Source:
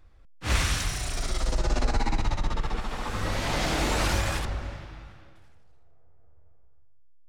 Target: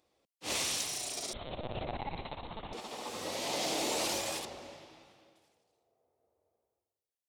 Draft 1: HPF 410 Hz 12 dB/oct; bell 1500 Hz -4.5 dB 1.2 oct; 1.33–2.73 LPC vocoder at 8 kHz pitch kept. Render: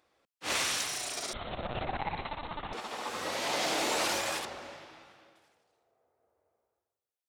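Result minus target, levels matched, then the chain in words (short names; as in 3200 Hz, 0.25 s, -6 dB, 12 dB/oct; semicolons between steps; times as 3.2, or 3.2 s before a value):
2000 Hz band +4.0 dB
HPF 410 Hz 12 dB/oct; bell 1500 Hz -16 dB 1.2 oct; 1.33–2.73 LPC vocoder at 8 kHz pitch kept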